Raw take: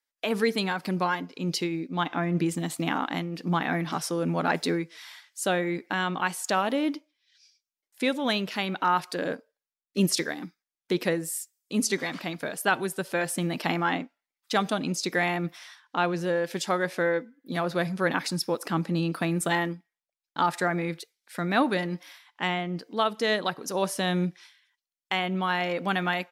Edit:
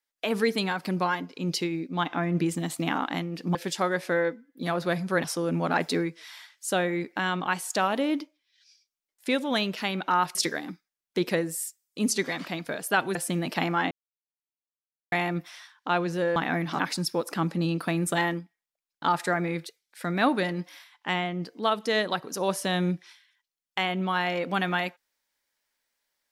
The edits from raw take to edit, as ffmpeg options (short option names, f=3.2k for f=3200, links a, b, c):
-filter_complex "[0:a]asplit=9[a][b][c][d][e][f][g][h][i];[a]atrim=end=3.552[j];[b]atrim=start=16.438:end=18.132[k];[c]atrim=start=3.978:end=9.092[l];[d]atrim=start=10.088:end=12.892[m];[e]atrim=start=13.228:end=13.99,asetpts=PTS-STARTPTS,afade=t=out:st=0.758:d=0.004:c=hsin[n];[f]atrim=start=13.99:end=15.2,asetpts=PTS-STARTPTS,volume=0[o];[g]atrim=start=15.2:end=16.442,asetpts=PTS-STARTPTS,afade=t=in:d=0.004:c=hsin[p];[h]atrim=start=3.548:end=3.982[q];[i]atrim=start=18.128[r];[j][k]acrossfade=d=0.004:c1=hsin:c2=hsin[s];[s][l]acrossfade=d=0.004:c1=hsin:c2=hsin[t];[t][m]acrossfade=d=0.004:c1=hsin:c2=hsin[u];[n][o][p]concat=n=3:v=0:a=1[v];[u][v]acrossfade=d=0.004:c1=hsin:c2=hsin[w];[w][q]acrossfade=d=0.004:c1=hsin:c2=hsin[x];[x][r]acrossfade=d=0.004:c1=hsin:c2=hsin"